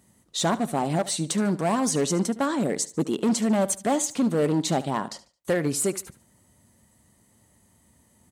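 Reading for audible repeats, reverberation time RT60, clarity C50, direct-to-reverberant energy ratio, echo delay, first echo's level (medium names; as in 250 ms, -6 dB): 2, no reverb, no reverb, no reverb, 73 ms, -17.0 dB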